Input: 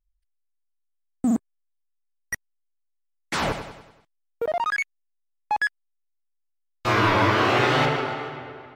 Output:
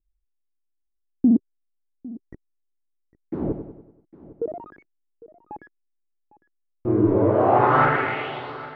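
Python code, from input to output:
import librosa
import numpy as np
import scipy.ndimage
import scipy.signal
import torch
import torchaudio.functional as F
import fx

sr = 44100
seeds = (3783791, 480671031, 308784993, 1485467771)

y = fx.filter_sweep_lowpass(x, sr, from_hz=340.0, to_hz=4500.0, start_s=7.05, end_s=8.52, q=2.8)
y = y + 10.0 ** (-19.5 / 20.0) * np.pad(y, (int(804 * sr / 1000.0), 0))[:len(y)]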